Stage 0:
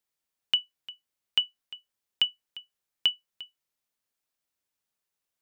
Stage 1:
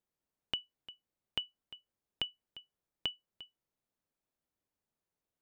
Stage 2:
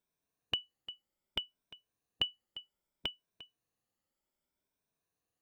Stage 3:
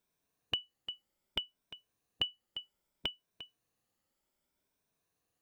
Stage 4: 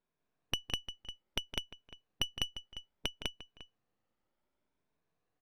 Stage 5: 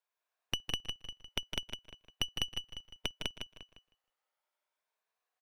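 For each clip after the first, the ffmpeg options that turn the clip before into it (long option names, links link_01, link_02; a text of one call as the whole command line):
ffmpeg -i in.wav -af "acompressor=threshold=-23dB:ratio=6,tiltshelf=frequency=1100:gain=8,volume=-2.5dB" out.wav
ffmpeg -i in.wav -af "afftfilt=real='re*pow(10,9/40*sin(2*PI*(1.6*log(max(b,1)*sr/1024/100)/log(2)-(0.64)*(pts-256)/sr)))':imag='im*pow(10,9/40*sin(2*PI*(1.6*log(max(b,1)*sr/1024/100)/log(2)-(0.64)*(pts-256)/sr)))':win_size=1024:overlap=0.75,volume=1dB" out.wav
ffmpeg -i in.wav -af "alimiter=limit=-20.5dB:level=0:latency=1:release=424,volume=4.5dB" out.wav
ffmpeg -i in.wav -af "aeval=exprs='if(lt(val(0),0),0.251*val(0),val(0))':channel_layout=same,aecho=1:1:163.3|201.2:0.316|0.891,adynamicsmooth=sensitivity=5.5:basefreq=2900,volume=2.5dB" out.wav
ffmpeg -i in.wav -filter_complex "[0:a]acrossover=split=570|1400[link_01][link_02][link_03];[link_01]aeval=exprs='val(0)*gte(abs(val(0)),0.00178)':channel_layout=same[link_04];[link_04][link_02][link_03]amix=inputs=3:normalize=0,aecho=1:1:157|314|471:0.422|0.0675|0.0108" out.wav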